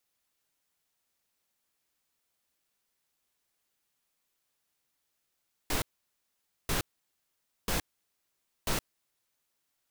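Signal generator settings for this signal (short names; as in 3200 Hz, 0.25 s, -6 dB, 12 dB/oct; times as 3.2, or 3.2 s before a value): noise bursts pink, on 0.12 s, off 0.87 s, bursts 4, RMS -29.5 dBFS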